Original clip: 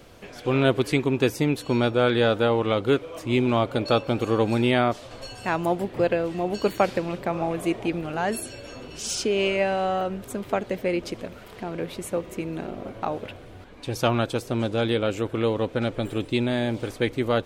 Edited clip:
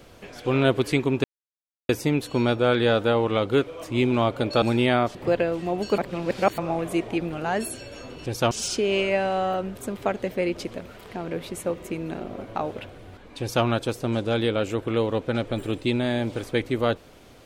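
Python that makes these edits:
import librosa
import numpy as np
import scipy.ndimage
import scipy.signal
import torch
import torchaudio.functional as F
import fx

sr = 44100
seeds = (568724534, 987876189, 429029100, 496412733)

y = fx.edit(x, sr, fx.insert_silence(at_s=1.24, length_s=0.65),
    fx.cut(start_s=3.97, length_s=0.5),
    fx.cut(start_s=5.0, length_s=0.87),
    fx.reverse_span(start_s=6.7, length_s=0.6),
    fx.duplicate(start_s=13.87, length_s=0.25, to_s=8.98), tone=tone)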